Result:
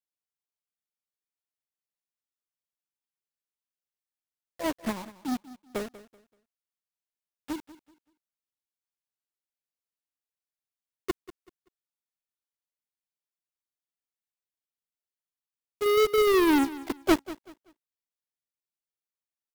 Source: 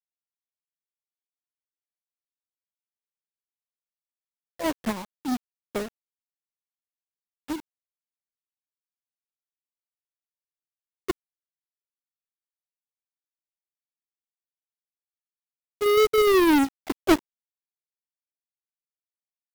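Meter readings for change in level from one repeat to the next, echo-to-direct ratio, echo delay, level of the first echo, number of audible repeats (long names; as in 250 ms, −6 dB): −11.0 dB, −16.5 dB, 191 ms, −17.0 dB, 2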